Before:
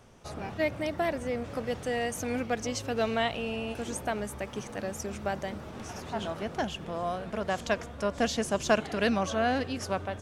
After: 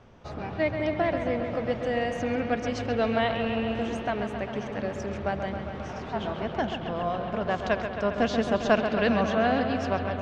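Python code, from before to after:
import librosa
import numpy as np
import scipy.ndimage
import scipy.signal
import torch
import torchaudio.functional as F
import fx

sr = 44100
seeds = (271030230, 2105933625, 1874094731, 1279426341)

y = fx.air_absorb(x, sr, metres=180.0)
y = fx.echo_bbd(y, sr, ms=134, stages=4096, feedback_pct=78, wet_db=-8.0)
y = F.gain(torch.from_numpy(y), 3.0).numpy()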